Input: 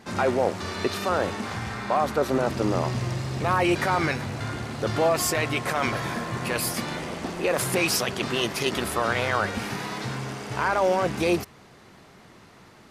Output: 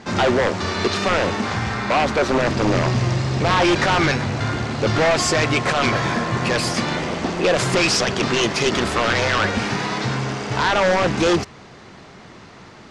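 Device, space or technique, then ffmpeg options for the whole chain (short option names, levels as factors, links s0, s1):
synthesiser wavefolder: -af "aeval=exprs='0.106*(abs(mod(val(0)/0.106+3,4)-2)-1)':c=same,lowpass=f=7200:w=0.5412,lowpass=f=7200:w=1.3066,volume=2.66"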